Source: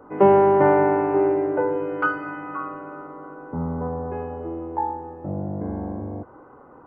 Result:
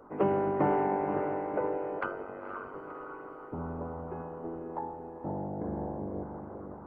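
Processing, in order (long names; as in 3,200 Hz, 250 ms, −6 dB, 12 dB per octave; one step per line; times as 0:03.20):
feedback delay with all-pass diffusion 505 ms, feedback 46%, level −6 dB
harmonic and percussive parts rebalanced harmonic −15 dB
0:01.99–0:02.74: ring modulation 48 Hz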